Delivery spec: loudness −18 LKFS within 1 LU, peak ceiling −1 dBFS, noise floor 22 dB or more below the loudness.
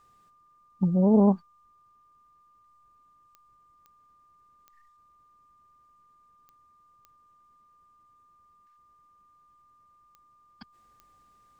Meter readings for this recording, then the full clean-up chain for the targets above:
number of clicks 7; interfering tone 1,200 Hz; level of the tone −59 dBFS; integrated loudness −23.0 LKFS; sample peak −9.5 dBFS; target loudness −18.0 LKFS
→ click removal
notch filter 1,200 Hz, Q 30
level +5 dB

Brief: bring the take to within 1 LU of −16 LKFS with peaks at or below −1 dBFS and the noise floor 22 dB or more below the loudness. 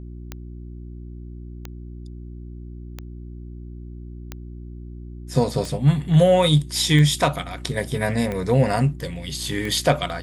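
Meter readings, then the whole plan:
number of clicks 8; mains hum 60 Hz; hum harmonics up to 360 Hz; level of the hum −34 dBFS; integrated loudness −20.5 LKFS; sample peak −4.0 dBFS; target loudness −16.0 LKFS
→ click removal
hum removal 60 Hz, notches 6
level +4.5 dB
brickwall limiter −1 dBFS

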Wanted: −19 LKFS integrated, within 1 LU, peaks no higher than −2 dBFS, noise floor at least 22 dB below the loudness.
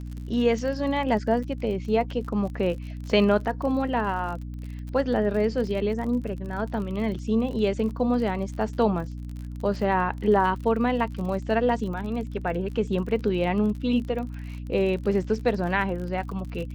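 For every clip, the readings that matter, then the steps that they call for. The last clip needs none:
crackle rate 42 per second; mains hum 60 Hz; hum harmonics up to 300 Hz; level of the hum −33 dBFS; integrated loudness −26.0 LKFS; sample peak −7.5 dBFS; target loudness −19.0 LKFS
→ click removal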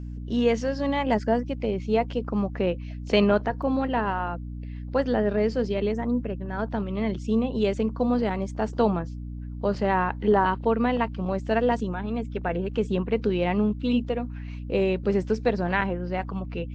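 crackle rate 0.18 per second; mains hum 60 Hz; hum harmonics up to 300 Hz; level of the hum −33 dBFS
→ hum removal 60 Hz, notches 5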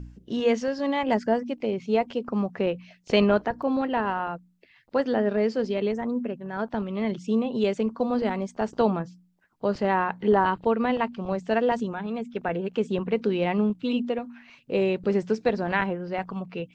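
mains hum none found; integrated loudness −26.5 LKFS; sample peak −8.0 dBFS; target loudness −19.0 LKFS
→ level +7.5 dB
brickwall limiter −2 dBFS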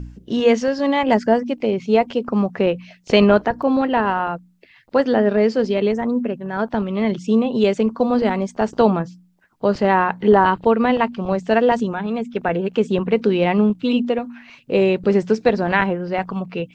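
integrated loudness −19.0 LKFS; sample peak −2.0 dBFS; background noise floor −53 dBFS

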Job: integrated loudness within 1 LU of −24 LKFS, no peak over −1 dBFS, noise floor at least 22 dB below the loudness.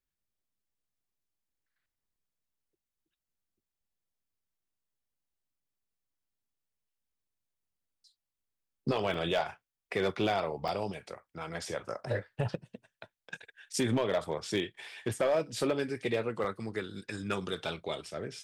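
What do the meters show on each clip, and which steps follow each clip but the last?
share of clipped samples 0.3%; peaks flattened at −22.0 dBFS; number of dropouts 3; longest dropout 2.4 ms; integrated loudness −34.0 LKFS; sample peak −22.0 dBFS; target loudness −24.0 LKFS
→ clipped peaks rebuilt −22 dBFS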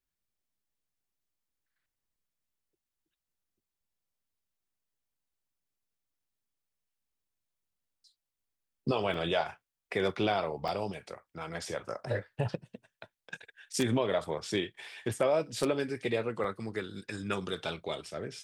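share of clipped samples 0.0%; number of dropouts 3; longest dropout 2.4 ms
→ repair the gap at 0:09.14/0:10.68/0:16.44, 2.4 ms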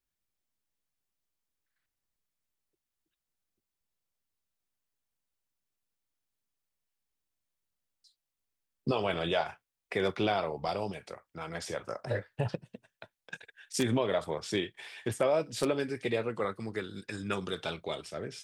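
number of dropouts 0; integrated loudness −33.5 LKFS; sample peak −13.0 dBFS; target loudness −24.0 LKFS
→ level +9.5 dB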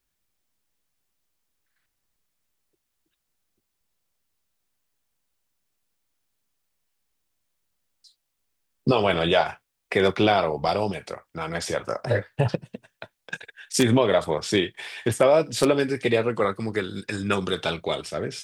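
integrated loudness −24.0 LKFS; sample peak −3.5 dBFS; background noise floor −79 dBFS

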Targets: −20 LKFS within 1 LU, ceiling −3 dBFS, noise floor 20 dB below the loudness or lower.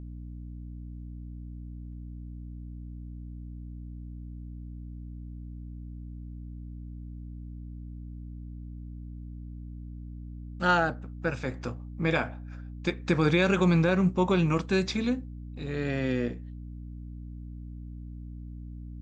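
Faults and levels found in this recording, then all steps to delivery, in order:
mains hum 60 Hz; hum harmonics up to 300 Hz; level of the hum −38 dBFS; integrated loudness −27.5 LKFS; sample peak −11.0 dBFS; target loudness −20.0 LKFS
→ mains-hum notches 60/120/180/240/300 Hz
level +7.5 dB

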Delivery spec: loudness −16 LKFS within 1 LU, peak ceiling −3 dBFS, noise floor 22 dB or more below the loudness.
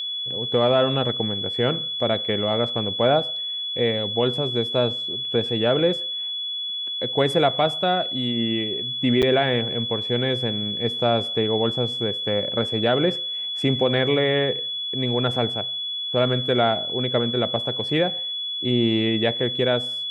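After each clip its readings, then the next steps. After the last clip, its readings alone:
number of dropouts 1; longest dropout 7.6 ms; interfering tone 3,400 Hz; level of the tone −26 dBFS; integrated loudness −22.0 LKFS; sample peak −7.0 dBFS; target loudness −16.0 LKFS
→ repair the gap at 0:09.22, 7.6 ms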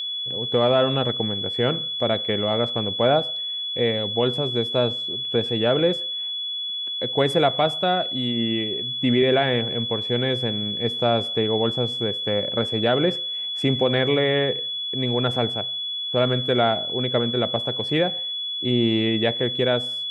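number of dropouts 0; interfering tone 3,400 Hz; level of the tone −26 dBFS
→ notch filter 3,400 Hz, Q 30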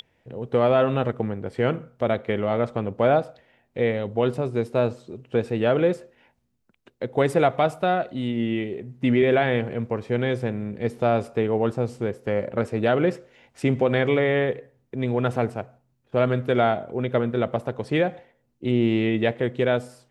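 interfering tone none found; integrated loudness −24.0 LKFS; sample peak −7.5 dBFS; target loudness −16.0 LKFS
→ level +8 dB
brickwall limiter −3 dBFS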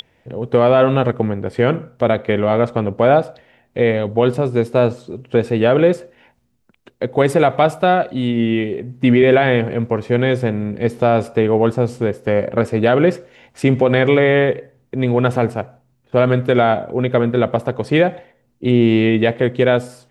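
integrated loudness −16.5 LKFS; sample peak −3.0 dBFS; background noise floor −61 dBFS

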